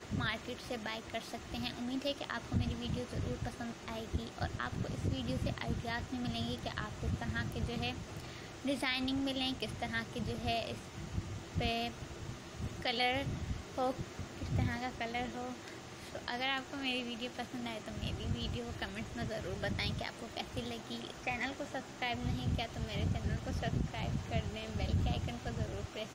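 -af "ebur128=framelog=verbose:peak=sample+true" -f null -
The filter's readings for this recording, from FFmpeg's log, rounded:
Integrated loudness:
  I:         -38.4 LUFS
  Threshold: -48.4 LUFS
Loudness range:
  LRA:         2.3 LU
  Threshold: -58.3 LUFS
  LRA low:   -39.5 LUFS
  LRA high:  -37.2 LUFS
Sample peak:
  Peak:      -19.6 dBFS
True peak:
  Peak:      -19.6 dBFS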